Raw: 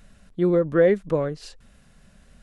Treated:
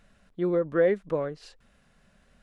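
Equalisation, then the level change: low shelf 270 Hz -8.5 dB; high shelf 4600 Hz -9.5 dB; -2.5 dB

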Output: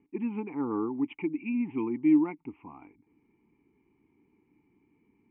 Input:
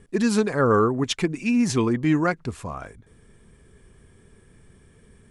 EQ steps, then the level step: vowel filter u; steep low-pass 3000 Hz 96 dB/oct; +1.5 dB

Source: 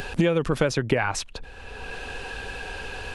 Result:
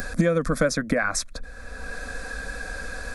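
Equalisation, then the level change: tilt +1.5 dB/oct; low shelf 210 Hz +10.5 dB; fixed phaser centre 580 Hz, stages 8; +2.5 dB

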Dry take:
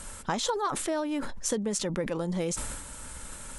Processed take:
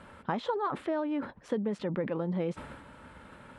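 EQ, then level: HPF 110 Hz 12 dB/oct; air absorption 460 m; 0.0 dB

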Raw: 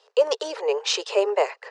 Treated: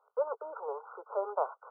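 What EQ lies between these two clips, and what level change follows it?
HPF 1100 Hz 12 dB/oct; brick-wall FIR low-pass 1500 Hz; 0.0 dB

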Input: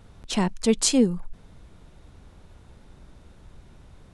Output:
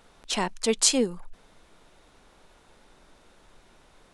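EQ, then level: bell 88 Hz -14.5 dB 2.6 oct; low shelf 200 Hz -7 dB; +2.0 dB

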